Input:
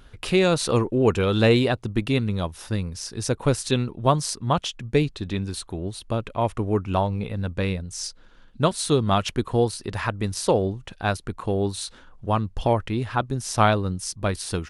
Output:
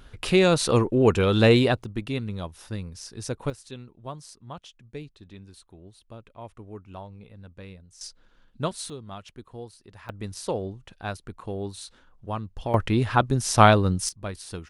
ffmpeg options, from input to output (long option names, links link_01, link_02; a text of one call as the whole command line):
ffmpeg -i in.wav -af "asetnsamples=nb_out_samples=441:pad=0,asendcmd='1.84 volume volume -7dB;3.5 volume volume -18dB;8.01 volume volume -7.5dB;8.9 volume volume -19dB;10.09 volume volume -8.5dB;12.74 volume volume 3.5dB;14.09 volume volume -9dB',volume=0.5dB" out.wav